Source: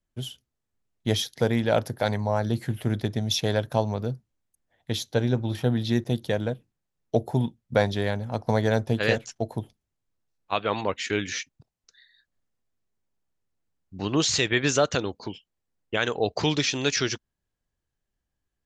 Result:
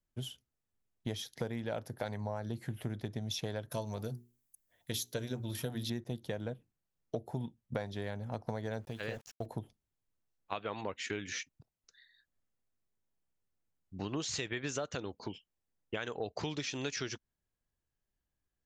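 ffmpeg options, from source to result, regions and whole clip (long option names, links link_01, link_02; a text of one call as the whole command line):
ffmpeg -i in.wav -filter_complex "[0:a]asettb=1/sr,asplit=3[link_01][link_02][link_03];[link_01]atrim=end=3.714[link_04];[link_02]atrim=start=3.71:end=5.9,asetpts=PTS-STARTPTS,afade=type=in:duration=0.004:curve=qsin,afade=type=out:start_time=2.186:duration=0.004:curve=qsin,asuperstop=centerf=800:order=20:qfactor=7.6,aemphasis=mode=production:type=75fm,bandreject=frequency=60:width_type=h:width=6,bandreject=frequency=120:width_type=h:width=6,bandreject=frequency=180:width_type=h:width=6,bandreject=frequency=240:width_type=h:width=6,bandreject=frequency=300:width_type=h:width=6,bandreject=frequency=360:width_type=h:width=6,bandreject=frequency=420:width_type=h:width=6[link_05];[link_03]atrim=start=5.896[link_06];[link_04][link_05]acrossfade=duration=0.004:curve1=hsin:curve2=qsin[link_07];[link_07][link_06]acrossfade=duration=0.004:curve1=qsin:curve2=hsin,asettb=1/sr,asplit=3[link_08][link_09][link_10];[link_08]atrim=end=8.804[link_11];[link_09]atrim=start=8.8:end=9.46,asetpts=PTS-STARTPTS,afade=type=in:duration=0.004:curve=qsin,afade=type=out:start_time=0.656:duration=0.004:curve=qsin,acrossover=split=1300|5800[link_12][link_13][link_14];[link_12]acompressor=threshold=-30dB:ratio=4[link_15];[link_13]acompressor=threshold=-37dB:ratio=4[link_16];[link_14]acompressor=threshold=-58dB:ratio=4[link_17];[link_15][link_16][link_17]amix=inputs=3:normalize=0,asubboost=boost=10:cutoff=110,aeval=exprs='val(0)*gte(abs(val(0)),0.00398)':channel_layout=same[link_18];[link_10]atrim=start=9.456[link_19];[link_11][link_18]acrossfade=duration=0.004:curve1=hsin:curve2=qsin[link_20];[link_20][link_19]acrossfade=duration=0.004:curve1=qsin:curve2=hsin,equalizer=frequency=4200:width=1.5:gain=-2.5,acompressor=threshold=-29dB:ratio=6,volume=-5dB" out.wav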